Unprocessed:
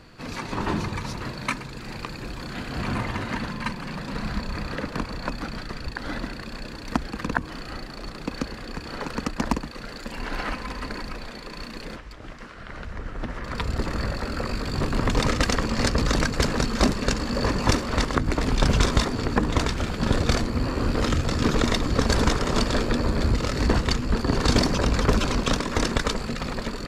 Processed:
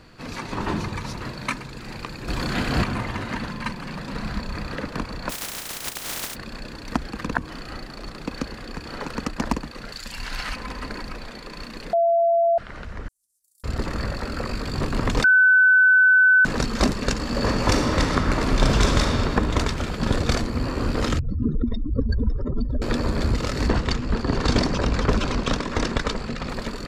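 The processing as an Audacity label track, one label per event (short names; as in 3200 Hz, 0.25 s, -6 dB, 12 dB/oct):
2.280000	2.840000	gain +8.5 dB
5.290000	6.340000	spectral contrast lowered exponent 0.12
9.920000	10.560000	EQ curve 110 Hz 0 dB, 350 Hz -11 dB, 4900 Hz +7 dB
11.930000	12.580000	bleep 677 Hz -15.5 dBFS
13.080000	13.640000	inverse Chebyshev high-pass stop band from 2500 Hz, stop band 70 dB
15.240000	16.450000	bleep 1510 Hz -11.5 dBFS
17.190000	19.050000	reverb throw, RT60 2.9 s, DRR 0.5 dB
21.190000	22.820000	spectral contrast raised exponent 3
23.690000	26.490000	air absorption 56 m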